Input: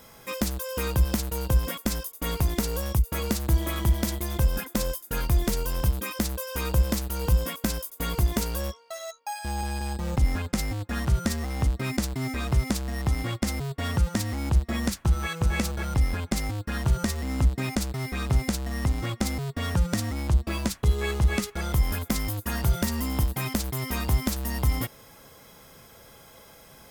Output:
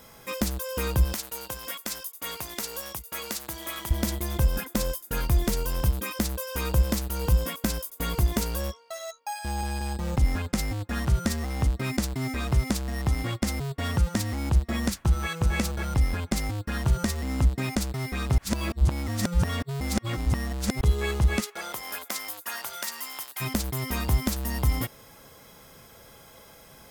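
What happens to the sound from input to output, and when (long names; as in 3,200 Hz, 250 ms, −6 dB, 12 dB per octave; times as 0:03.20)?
0:01.13–0:03.91: high-pass filter 1,100 Hz 6 dB per octave
0:18.38–0:20.81: reverse
0:21.40–0:23.40: high-pass filter 450 Hz → 1,300 Hz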